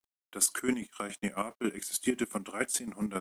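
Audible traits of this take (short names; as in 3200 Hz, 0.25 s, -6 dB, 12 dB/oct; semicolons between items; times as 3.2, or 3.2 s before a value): chopped level 7.3 Hz, depth 65%, duty 35%; a quantiser's noise floor 12-bit, dither none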